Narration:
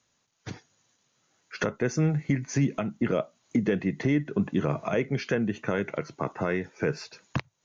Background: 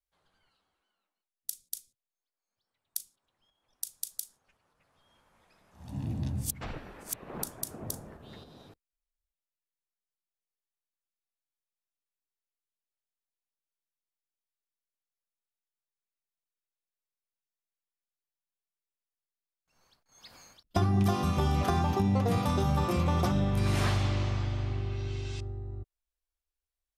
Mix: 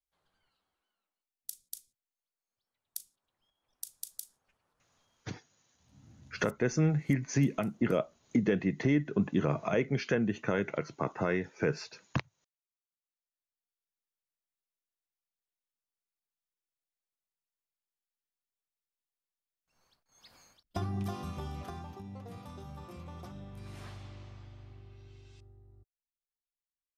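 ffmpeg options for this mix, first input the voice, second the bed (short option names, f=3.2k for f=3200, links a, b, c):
-filter_complex "[0:a]adelay=4800,volume=-2.5dB[a];[1:a]volume=14.5dB,afade=t=out:st=4.95:d=0.5:silence=0.11885,afade=t=in:st=12.96:d=1.05:silence=0.105925,afade=t=out:st=19.72:d=2.25:silence=0.177828[b];[a][b]amix=inputs=2:normalize=0"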